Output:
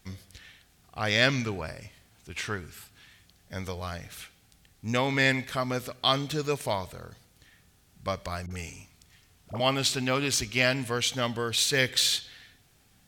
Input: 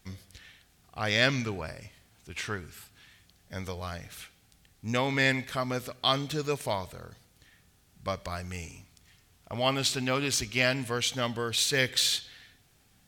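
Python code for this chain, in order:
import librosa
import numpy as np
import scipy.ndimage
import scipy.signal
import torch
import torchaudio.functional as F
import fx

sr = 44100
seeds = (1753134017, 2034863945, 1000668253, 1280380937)

y = fx.dispersion(x, sr, late='highs', ms=47.0, hz=580.0, at=(8.46, 9.6))
y = y * librosa.db_to_amplitude(1.5)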